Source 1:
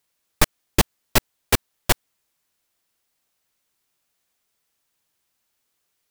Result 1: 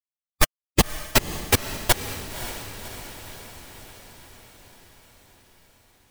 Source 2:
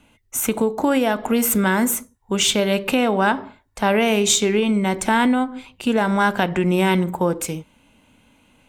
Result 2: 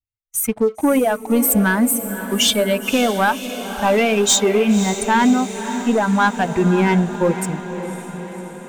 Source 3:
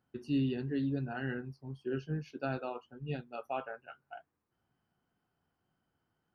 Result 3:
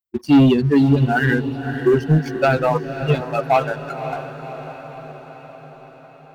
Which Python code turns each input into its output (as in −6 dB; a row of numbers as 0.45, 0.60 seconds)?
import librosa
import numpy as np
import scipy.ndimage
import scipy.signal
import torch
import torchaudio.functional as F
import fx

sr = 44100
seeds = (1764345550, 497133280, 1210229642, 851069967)

y = fx.bin_expand(x, sr, power=2.0)
y = fx.leveller(y, sr, passes=2)
y = fx.echo_diffused(y, sr, ms=551, feedback_pct=62, wet_db=-11.0)
y = y * 10.0 ** (-6 / 20.0) / np.max(np.abs(y))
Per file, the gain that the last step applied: −2.5, −0.5, +18.0 decibels